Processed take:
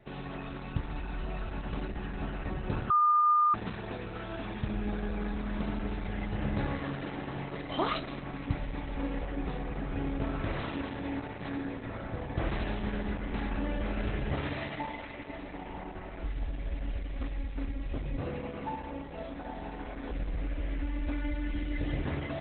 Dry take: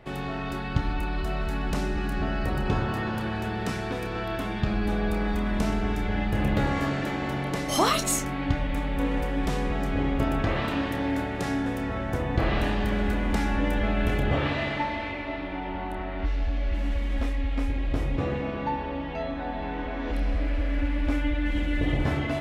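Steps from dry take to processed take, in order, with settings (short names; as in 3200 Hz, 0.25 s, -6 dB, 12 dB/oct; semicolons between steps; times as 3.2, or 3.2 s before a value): 2.9–3.54 bleep 1210 Hz -14 dBFS; 9.31–9.96 dynamic EQ 5000 Hz, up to -5 dB, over -55 dBFS, Q 0.87; gain -6.5 dB; Opus 8 kbps 48000 Hz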